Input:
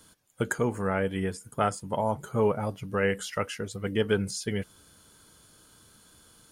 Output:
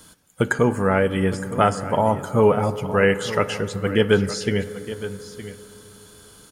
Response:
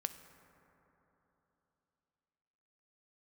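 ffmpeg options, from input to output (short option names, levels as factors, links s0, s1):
-filter_complex "[0:a]acrossover=split=6100[s0][s1];[s1]acompressor=threshold=0.00355:ratio=4:attack=1:release=60[s2];[s0][s2]amix=inputs=2:normalize=0,aecho=1:1:915:0.2,asplit=2[s3][s4];[1:a]atrim=start_sample=2205[s5];[s4][s5]afir=irnorm=-1:irlink=0,volume=1.88[s6];[s3][s6]amix=inputs=2:normalize=0"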